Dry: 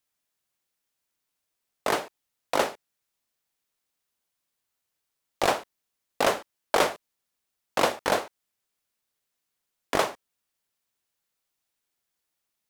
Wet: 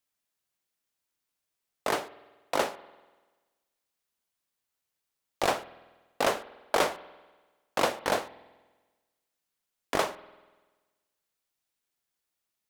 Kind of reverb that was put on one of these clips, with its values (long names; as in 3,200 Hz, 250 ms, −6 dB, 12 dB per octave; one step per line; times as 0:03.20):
spring reverb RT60 1.3 s, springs 48 ms, chirp 20 ms, DRR 17 dB
level −3 dB